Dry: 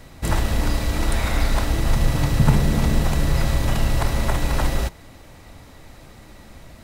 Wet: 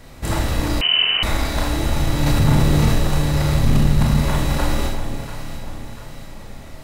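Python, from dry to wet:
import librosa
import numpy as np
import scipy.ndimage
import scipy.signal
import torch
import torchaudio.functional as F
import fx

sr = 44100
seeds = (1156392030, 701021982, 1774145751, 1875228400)

p1 = fx.low_shelf_res(x, sr, hz=290.0, db=7.0, q=3.0, at=(3.56, 4.18))
p2 = 10.0 ** (-12.0 / 20.0) * np.tanh(p1 / 10.0 ** (-12.0 / 20.0))
p3 = p2 + fx.echo_alternate(p2, sr, ms=346, hz=920.0, feedback_pct=67, wet_db=-7.0, dry=0)
p4 = fx.rev_schroeder(p3, sr, rt60_s=0.43, comb_ms=27, drr_db=0.0)
p5 = fx.freq_invert(p4, sr, carrier_hz=3000, at=(0.81, 1.23))
y = fx.env_flatten(p5, sr, amount_pct=50, at=(2.26, 2.99))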